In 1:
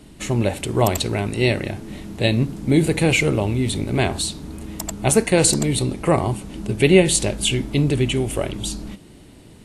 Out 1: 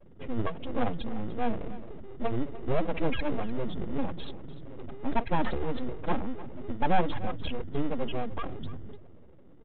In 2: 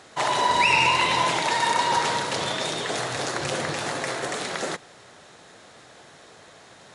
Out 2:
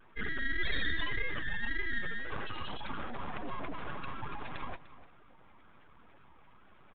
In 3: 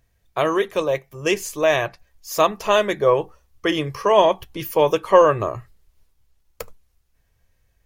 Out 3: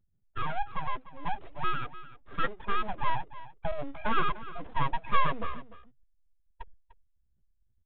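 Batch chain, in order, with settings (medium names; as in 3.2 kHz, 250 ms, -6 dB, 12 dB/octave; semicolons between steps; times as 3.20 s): spectral contrast enhancement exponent 3.5; vibrato 1.8 Hz 78 cents; in parallel at -10 dB: sample-and-hold 27×; on the sum: full-wave rectifier; on a send: delay 298 ms -16 dB; on the sum: resampled via 8 kHz; trim -8.5 dB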